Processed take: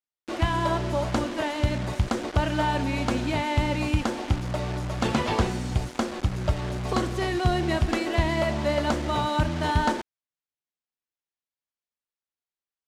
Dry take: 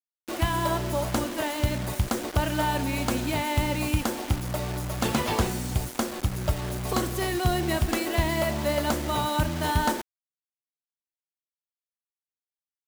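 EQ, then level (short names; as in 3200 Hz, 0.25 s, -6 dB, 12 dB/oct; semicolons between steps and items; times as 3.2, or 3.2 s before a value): air absorption 83 m; +1.5 dB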